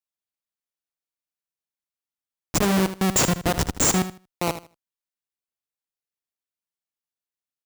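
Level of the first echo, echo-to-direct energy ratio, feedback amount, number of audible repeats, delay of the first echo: -12.0 dB, -12.0 dB, 20%, 2, 78 ms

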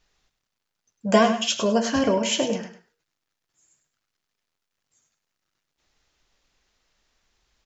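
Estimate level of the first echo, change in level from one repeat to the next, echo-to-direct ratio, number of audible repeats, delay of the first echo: -10.0 dB, -12.5 dB, -10.0 dB, 2, 101 ms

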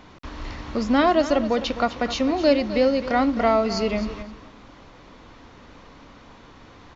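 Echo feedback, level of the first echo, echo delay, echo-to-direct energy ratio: 16%, -13.0 dB, 259 ms, -13.0 dB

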